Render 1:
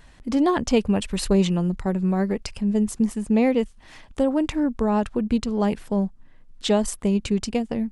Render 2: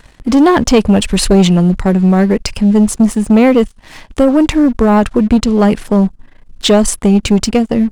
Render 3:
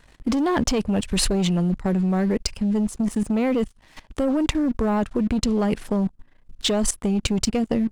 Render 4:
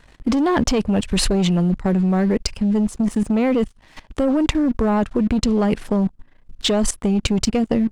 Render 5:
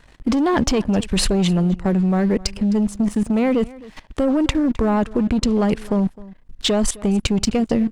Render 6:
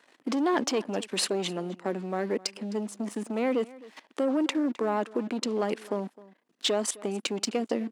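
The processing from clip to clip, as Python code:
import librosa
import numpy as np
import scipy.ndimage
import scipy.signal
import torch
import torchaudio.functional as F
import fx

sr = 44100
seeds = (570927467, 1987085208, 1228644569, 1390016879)

y1 = fx.leveller(x, sr, passes=2)
y1 = y1 * 10.0 ** (6.5 / 20.0)
y2 = fx.level_steps(y1, sr, step_db=16)
y2 = y2 * 10.0 ** (-4.5 / 20.0)
y3 = fx.high_shelf(y2, sr, hz=7700.0, db=-6.5)
y3 = y3 * 10.0 ** (3.5 / 20.0)
y4 = y3 + 10.0 ** (-20.5 / 20.0) * np.pad(y3, (int(260 * sr / 1000.0), 0))[:len(y3)]
y5 = scipy.signal.sosfilt(scipy.signal.butter(4, 270.0, 'highpass', fs=sr, output='sos'), y4)
y5 = y5 * 10.0 ** (-6.5 / 20.0)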